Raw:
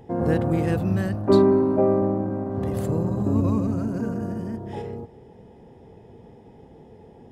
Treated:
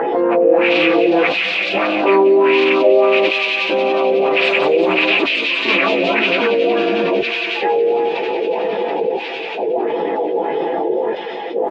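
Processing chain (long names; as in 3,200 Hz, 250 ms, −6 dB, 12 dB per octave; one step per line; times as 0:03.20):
loose part that buzzes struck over −22 dBFS, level −15 dBFS
downward expander −40 dBFS
high-pass filter 350 Hz 24 dB per octave
low-pass that shuts in the quiet parts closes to 2,400 Hz, open at −19.5 dBFS
comb filter 6 ms, depth 43%
upward compression, threshold −28 dBFS
auto-filter low-pass sine 2.6 Hz 490–4,100 Hz
gate pattern "xxxxxx..x" 110 BPM −24 dB
delay with a high-pass on its return 114 ms, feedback 82%, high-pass 3,400 Hz, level −5 dB
time stretch by phase vocoder 1.6×
envelope flattener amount 70%
level +4 dB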